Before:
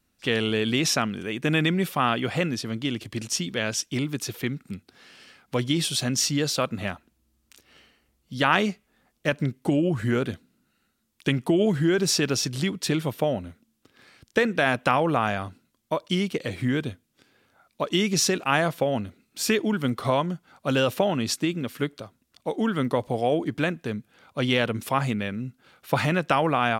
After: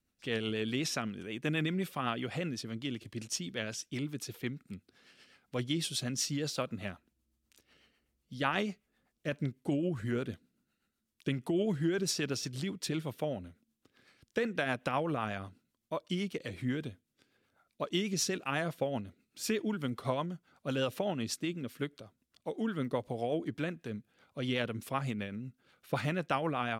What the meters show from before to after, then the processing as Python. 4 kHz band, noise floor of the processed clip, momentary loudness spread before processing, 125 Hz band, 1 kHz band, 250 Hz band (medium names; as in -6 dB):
-10.5 dB, -82 dBFS, 11 LU, -9.5 dB, -11.5 dB, -9.5 dB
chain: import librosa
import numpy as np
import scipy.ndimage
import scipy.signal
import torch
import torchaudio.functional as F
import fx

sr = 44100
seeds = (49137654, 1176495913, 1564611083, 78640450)

y = fx.rotary(x, sr, hz=8.0)
y = y * librosa.db_to_amplitude(-8.0)